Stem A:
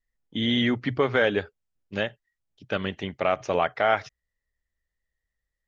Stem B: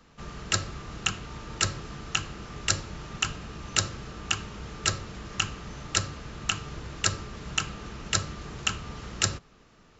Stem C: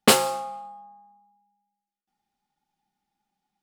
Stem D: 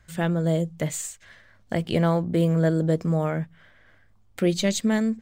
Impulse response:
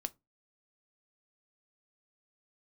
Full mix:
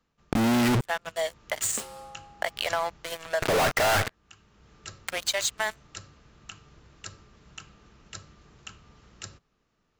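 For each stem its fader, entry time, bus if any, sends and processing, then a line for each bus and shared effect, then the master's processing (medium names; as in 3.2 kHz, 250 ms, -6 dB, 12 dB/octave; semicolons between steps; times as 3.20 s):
+1.0 dB, 0.00 s, muted 0.81–3.42 s, bus A, no send, steep low-pass 2.1 kHz 36 dB/octave; bass shelf 78 Hz +6.5 dB; fuzz box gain 44 dB, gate -44 dBFS
-16.0 dB, 0.00 s, no bus, no send, auto duck -14 dB, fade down 0.45 s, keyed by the first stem
-14.0 dB, 1.70 s, no bus, no send, compression 5:1, threshold -22 dBFS, peak gain reduction 10.5 dB
-11.5 dB, 0.70 s, bus A, no send, steep high-pass 650 Hz 36 dB/octave
bus A: 0.0 dB, waveshaping leveller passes 5; compression, threshold -20 dBFS, peak gain reduction 8.5 dB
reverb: none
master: compression, threshold -22 dBFS, peak gain reduction 4.5 dB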